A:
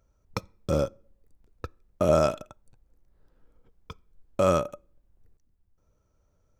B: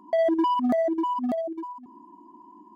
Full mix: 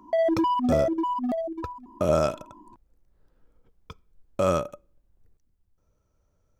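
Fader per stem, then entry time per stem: −1.0, −0.5 decibels; 0.00, 0.00 seconds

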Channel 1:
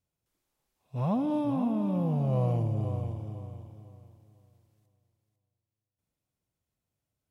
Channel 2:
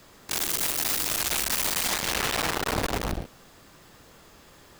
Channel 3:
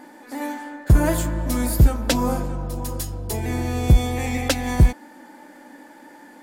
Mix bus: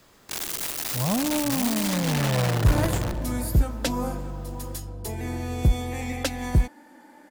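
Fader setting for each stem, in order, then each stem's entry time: +2.5, −3.5, −6.0 decibels; 0.00, 0.00, 1.75 seconds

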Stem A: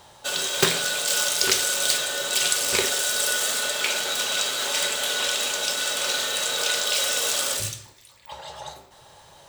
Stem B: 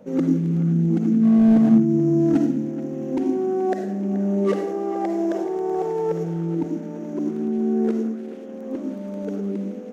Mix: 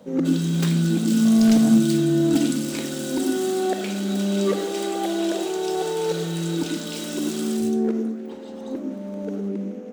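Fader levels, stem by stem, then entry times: −11.5, −1.0 decibels; 0.00, 0.00 seconds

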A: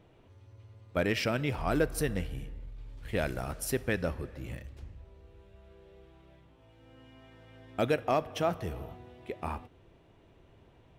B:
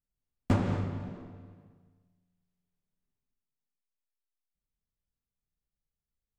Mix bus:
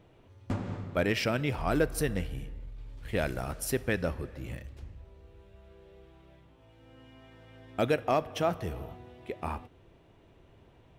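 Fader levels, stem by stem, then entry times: +1.0, −7.0 decibels; 0.00, 0.00 seconds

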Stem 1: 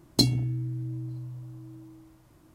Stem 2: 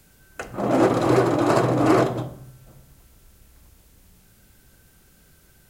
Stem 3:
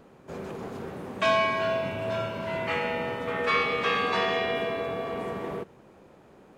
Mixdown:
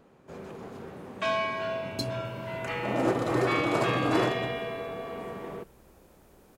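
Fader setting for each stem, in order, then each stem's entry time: −12.5, −8.5, −5.0 decibels; 1.80, 2.25, 0.00 seconds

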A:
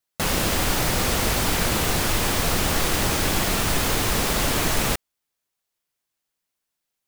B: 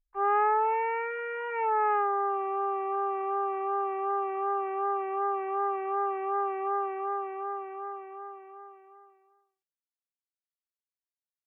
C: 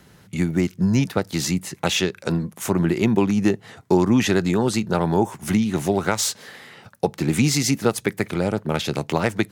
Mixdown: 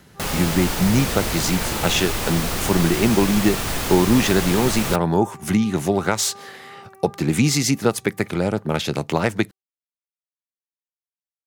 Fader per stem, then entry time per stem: −2.5, −13.5, +1.0 decibels; 0.00, 0.00, 0.00 seconds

